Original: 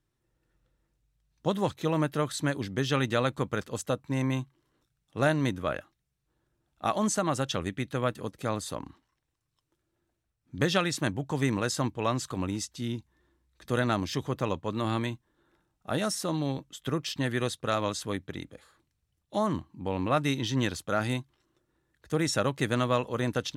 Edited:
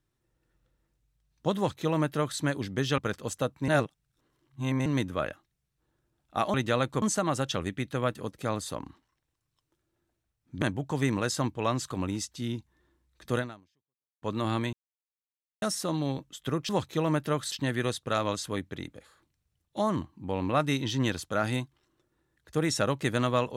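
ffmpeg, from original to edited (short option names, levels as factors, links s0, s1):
-filter_complex "[0:a]asplit=12[s0][s1][s2][s3][s4][s5][s6][s7][s8][s9][s10][s11];[s0]atrim=end=2.982[s12];[s1]atrim=start=3.458:end=4.162[s13];[s2]atrim=start=4.158:end=5.342,asetpts=PTS-STARTPTS,areverse[s14];[s3]atrim=start=5.338:end=7.022[s15];[s4]atrim=start=2.978:end=3.462[s16];[s5]atrim=start=7.018:end=10.622[s17];[s6]atrim=start=11.018:end=14.62,asetpts=PTS-STARTPTS,afade=t=out:st=2.752:d=0.85:c=exp[s18];[s7]atrim=start=14.62:end=15.13,asetpts=PTS-STARTPTS,afade=t=in:d=0.004:c=hsin,afade=t=out:st=0.506:d=0.004:c=hsin[s19];[s8]atrim=start=15.13:end=16.02,asetpts=PTS-STARTPTS,volume=0[s20];[s9]atrim=start=16.02:end=17.092,asetpts=PTS-STARTPTS,afade=t=in:d=0.004:c=hsin[s21];[s10]atrim=start=1.568:end=2.402[s22];[s11]atrim=start=17.088[s23];[s12][s13]acrossfade=d=0.004:c1=hsin:c2=hsin[s24];[s24][s14]acrossfade=d=0.004:c1=hsin:c2=hsin[s25];[s25][s15]acrossfade=d=0.004:c1=hsin:c2=hsin[s26];[s26][s16]acrossfade=d=0.004:c1=hsin:c2=hsin[s27];[s27][s17]acrossfade=d=0.004:c1=hsin:c2=hsin[s28];[s18][s19][s20][s21]concat=n=4:v=0:a=1[s29];[s28][s29]acrossfade=d=0.004:c1=hsin:c2=hsin[s30];[s30][s22]acrossfade=d=0.004:c1=hsin:c2=hsin[s31];[s31][s23]acrossfade=d=0.004:c1=hsin:c2=hsin"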